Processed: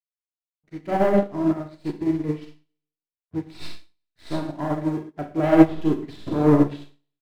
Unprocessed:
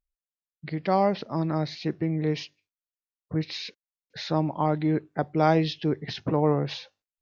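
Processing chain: tracing distortion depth 0.085 ms; low-pass that closes with the level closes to 1.7 kHz, closed at -21.5 dBFS; bass shelf 370 Hz +8 dB; comb 3 ms, depth 50%; waveshaping leveller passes 2; early reflections 20 ms -15 dB, 34 ms -10.5 dB; crossover distortion -38 dBFS; vibrato 9.9 Hz 41 cents; Schroeder reverb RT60 0.75 s, combs from 31 ms, DRR 0 dB; upward expansion 2.5:1, over -31 dBFS; trim -1.5 dB

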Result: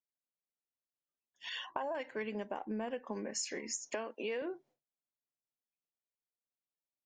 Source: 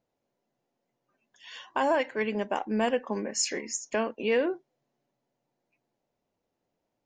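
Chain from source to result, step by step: 1.49–1.95 s: resonances exaggerated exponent 1.5; 2.51–2.91 s: low-pass 1.7 kHz 6 dB/octave; expander -50 dBFS; 3.90–4.42 s: high-pass 290 Hz 12 dB/octave; compression 6:1, threshold -41 dBFS, peak gain reduction 18 dB; trim +4 dB

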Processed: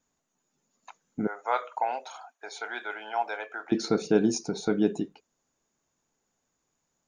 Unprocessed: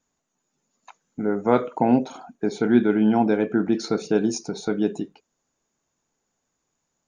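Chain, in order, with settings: 1.27–3.72 s: high-pass 720 Hz 24 dB/octave; trim -1.5 dB

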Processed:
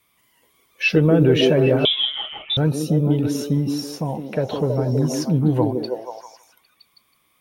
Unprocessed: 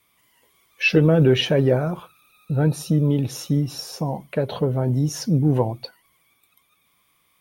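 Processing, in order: repeats whose band climbs or falls 161 ms, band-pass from 300 Hz, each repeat 0.7 oct, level 0 dB; 1.85–2.57 s: frequency inversion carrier 3.7 kHz

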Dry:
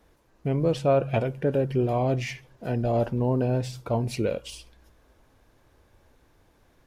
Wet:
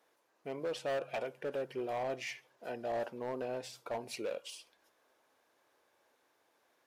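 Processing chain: high-pass 490 Hz 12 dB/octave; hard clipper -25 dBFS, distortion -10 dB; trim -6.5 dB

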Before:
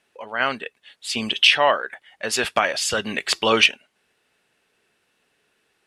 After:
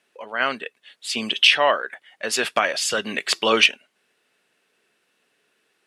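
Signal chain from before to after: high-pass 180 Hz 12 dB/octave; peaking EQ 840 Hz -3.5 dB 0.29 oct

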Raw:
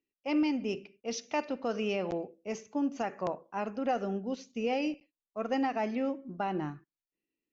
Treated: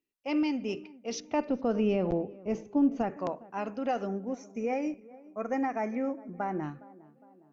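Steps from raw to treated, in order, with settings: 1.20–3.17 s: tilt EQ -3.5 dB/octave; 4.07–6.63 s: time-frequency box 2.5–5.3 kHz -17 dB; on a send: tape echo 411 ms, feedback 61%, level -19.5 dB, low-pass 1.2 kHz

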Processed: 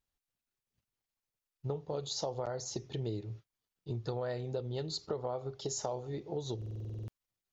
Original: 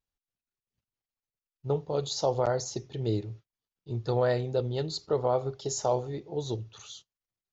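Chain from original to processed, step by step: compression, threshold -36 dBFS, peak gain reduction 14 dB; buffer glitch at 6.57 s, samples 2048, times 10; trim +2 dB

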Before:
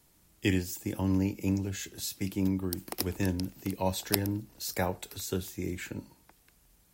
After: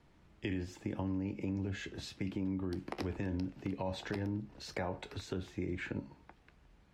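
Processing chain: low-pass 2.5 kHz 12 dB/octave; feedback comb 70 Hz, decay 0.18 s, harmonics all, mix 50%; peak limiter -29.5 dBFS, peak gain reduction 11 dB; compression 2:1, threshold -42 dBFS, peak gain reduction 5.5 dB; trim +6 dB

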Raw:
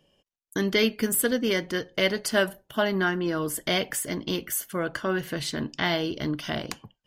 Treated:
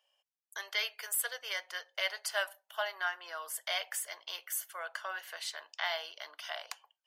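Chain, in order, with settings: steep high-pass 660 Hz 36 dB/octave; trim -7 dB

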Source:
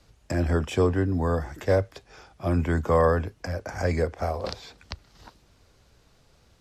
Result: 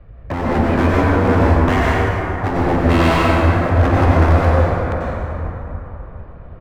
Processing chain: low-pass 2.3 kHz 24 dB/octave; tilt EQ -2 dB/octave; comb 1.7 ms, depth 35%; in parallel at +2 dB: compression, threshold -26 dBFS, peak gain reduction 14 dB; on the sum: wavefolder -17 dBFS; plate-style reverb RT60 3.5 s, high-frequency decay 0.45×, pre-delay 80 ms, DRR -6.5 dB; trim +1 dB

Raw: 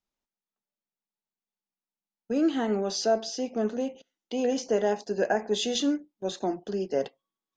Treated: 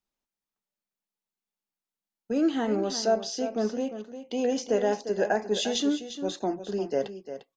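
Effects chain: delay 350 ms -11 dB

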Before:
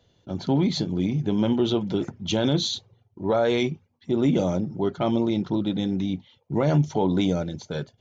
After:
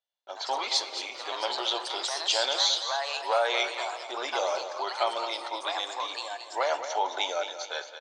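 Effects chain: gate -51 dBFS, range -29 dB; inverse Chebyshev high-pass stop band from 200 Hz, stop band 60 dB; in parallel at -2.5 dB: compression, threshold -30 dBFS, peak gain reduction 7 dB; on the sum: ever faster or slower copies 119 ms, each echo +3 st, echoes 2, each echo -6 dB; feedback delay 219 ms, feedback 36%, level -10 dB; on a send at -13.5 dB: reverberation RT60 2.0 s, pre-delay 3 ms

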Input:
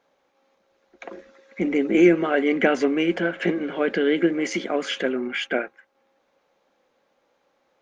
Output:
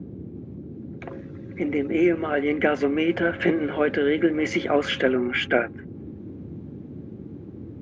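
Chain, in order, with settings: tone controls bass -3 dB, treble -10 dB; gain riding 0.5 s; band noise 75–350 Hz -38 dBFS

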